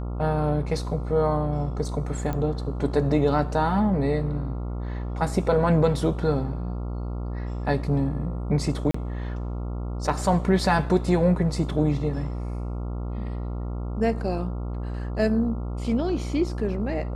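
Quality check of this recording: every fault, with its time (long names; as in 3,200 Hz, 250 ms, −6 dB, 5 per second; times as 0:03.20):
mains buzz 60 Hz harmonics 23 −30 dBFS
0:02.33: click −17 dBFS
0:08.91–0:08.94: drop-out 34 ms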